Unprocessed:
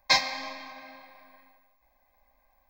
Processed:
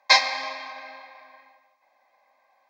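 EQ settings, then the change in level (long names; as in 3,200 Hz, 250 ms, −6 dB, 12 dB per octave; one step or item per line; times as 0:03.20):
high-pass filter 510 Hz 12 dB per octave
high-frequency loss of the air 61 metres
+7.0 dB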